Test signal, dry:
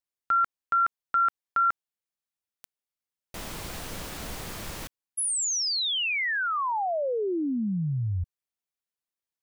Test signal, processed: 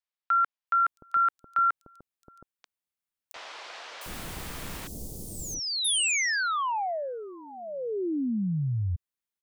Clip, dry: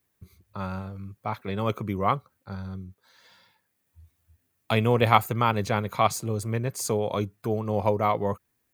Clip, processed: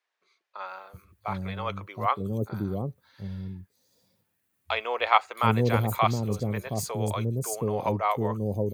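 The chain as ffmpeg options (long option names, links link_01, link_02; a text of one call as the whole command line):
ffmpeg -i in.wav -filter_complex "[0:a]acrossover=split=530|5600[link_01][link_02][link_03];[link_03]adelay=670[link_04];[link_01]adelay=720[link_05];[link_05][link_02][link_04]amix=inputs=3:normalize=0" out.wav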